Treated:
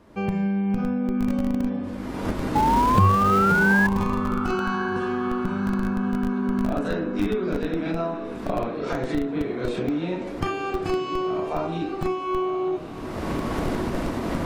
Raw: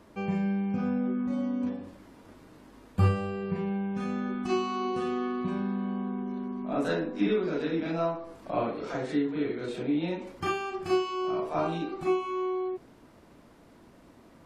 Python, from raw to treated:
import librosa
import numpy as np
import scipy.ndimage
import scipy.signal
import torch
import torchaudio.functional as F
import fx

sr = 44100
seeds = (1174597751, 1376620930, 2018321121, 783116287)

p1 = fx.recorder_agc(x, sr, target_db=-19.0, rise_db_per_s=36.0, max_gain_db=30)
p2 = fx.high_shelf(p1, sr, hz=4700.0, db=-5.0)
p3 = fx.spec_paint(p2, sr, seeds[0], shape='rise', start_s=2.55, length_s=1.32, low_hz=840.0, high_hz=1700.0, level_db=-21.0)
p4 = fx.low_shelf(p3, sr, hz=100.0, db=4.0)
p5 = fx.echo_diffused(p4, sr, ms=1098, feedback_pct=47, wet_db=-11.5)
p6 = fx.schmitt(p5, sr, flips_db=-17.5)
y = p5 + (p6 * librosa.db_to_amplitude(-4.5))